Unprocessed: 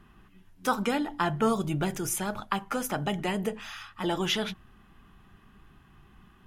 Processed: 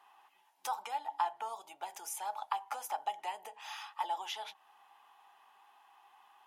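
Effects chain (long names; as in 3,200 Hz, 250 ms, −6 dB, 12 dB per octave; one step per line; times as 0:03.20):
parametric band 1,400 Hz −8.5 dB 1 octave
downward compressor 4 to 1, threshold −38 dBFS, peak gain reduction 14 dB
four-pole ladder high-pass 790 Hz, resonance 75%
level +10.5 dB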